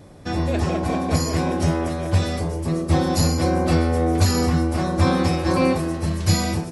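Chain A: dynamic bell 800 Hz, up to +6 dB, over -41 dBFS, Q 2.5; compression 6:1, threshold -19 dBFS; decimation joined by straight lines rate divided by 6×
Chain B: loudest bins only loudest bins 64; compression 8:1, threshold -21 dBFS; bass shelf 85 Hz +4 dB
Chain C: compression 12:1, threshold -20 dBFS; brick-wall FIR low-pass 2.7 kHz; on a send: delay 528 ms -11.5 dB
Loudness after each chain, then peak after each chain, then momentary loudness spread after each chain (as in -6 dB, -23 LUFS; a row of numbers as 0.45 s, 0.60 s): -24.5 LUFS, -25.0 LUFS, -25.5 LUFS; -11.0 dBFS, -12.0 dBFS, -13.0 dBFS; 2 LU, 2 LU, 2 LU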